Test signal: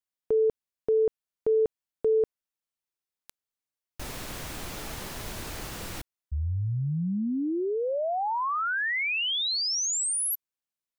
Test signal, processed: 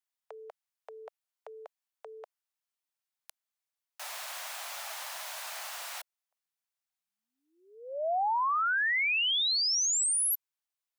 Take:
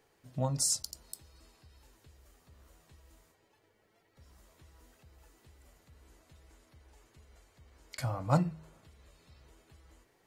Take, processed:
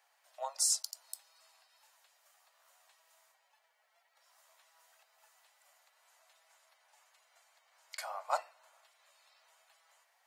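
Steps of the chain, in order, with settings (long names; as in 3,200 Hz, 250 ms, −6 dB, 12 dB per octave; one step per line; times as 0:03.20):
Butterworth high-pass 630 Hz 48 dB per octave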